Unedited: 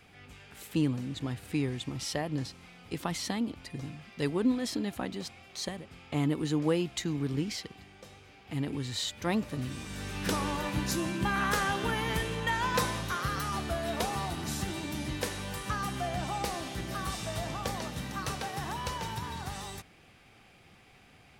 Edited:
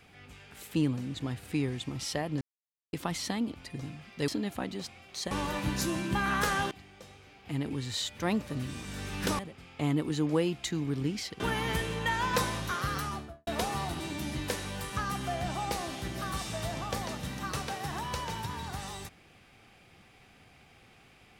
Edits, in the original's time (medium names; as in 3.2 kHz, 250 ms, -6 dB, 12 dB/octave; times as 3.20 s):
2.41–2.93 s: mute
4.28–4.69 s: delete
5.72–7.73 s: swap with 10.41–11.81 s
13.38–13.88 s: studio fade out
14.41–14.73 s: delete